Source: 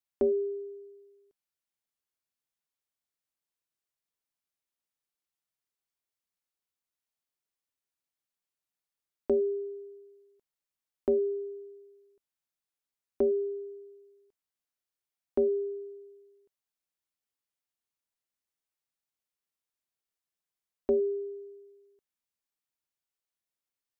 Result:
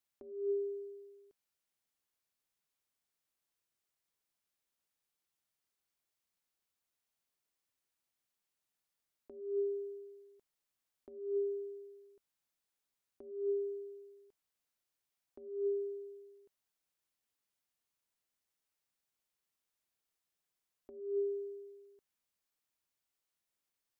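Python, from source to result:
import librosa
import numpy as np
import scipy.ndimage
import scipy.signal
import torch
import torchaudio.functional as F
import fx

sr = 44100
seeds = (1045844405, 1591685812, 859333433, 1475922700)

y = fx.over_compress(x, sr, threshold_db=-34.0, ratio=-0.5)
y = y * 10.0 ** (-2.5 / 20.0)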